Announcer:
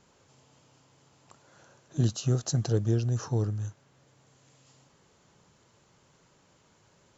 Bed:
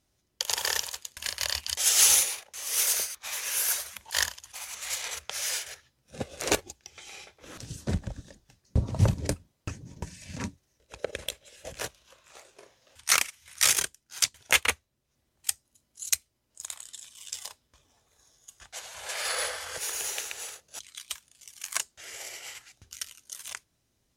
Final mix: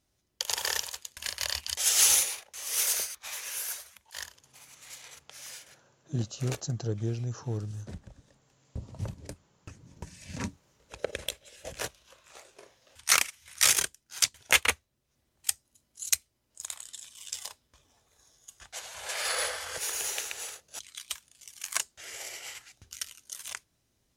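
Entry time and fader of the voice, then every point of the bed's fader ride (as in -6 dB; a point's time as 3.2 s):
4.15 s, -5.5 dB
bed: 3.18 s -2 dB
4.09 s -13.5 dB
9.51 s -13.5 dB
10.36 s 0 dB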